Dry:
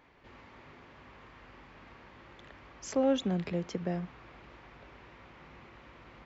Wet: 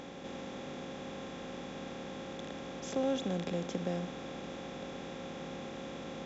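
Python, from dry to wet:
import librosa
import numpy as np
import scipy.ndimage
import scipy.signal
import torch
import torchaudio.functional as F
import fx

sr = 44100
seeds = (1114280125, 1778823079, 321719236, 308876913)

y = fx.bin_compress(x, sr, power=0.4)
y = y * 10.0 ** (-6.5 / 20.0)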